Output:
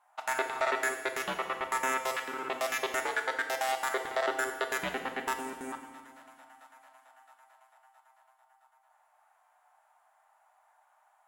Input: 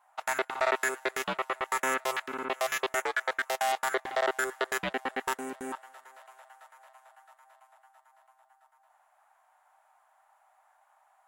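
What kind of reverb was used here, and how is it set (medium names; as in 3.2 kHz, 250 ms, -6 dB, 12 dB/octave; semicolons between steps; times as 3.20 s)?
FDN reverb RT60 1.4 s, low-frequency decay 1.55×, high-frequency decay 0.95×, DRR 4.5 dB; trim -2.5 dB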